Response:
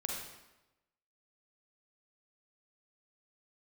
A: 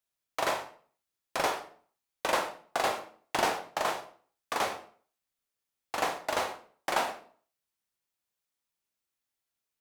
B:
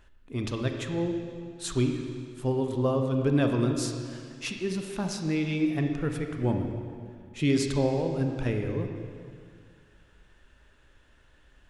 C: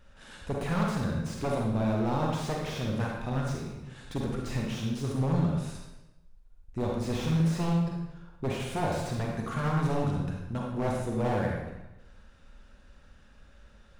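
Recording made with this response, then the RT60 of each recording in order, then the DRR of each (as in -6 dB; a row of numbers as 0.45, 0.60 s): C; 0.45, 2.1, 1.0 s; 5.0, 4.0, -1.0 dB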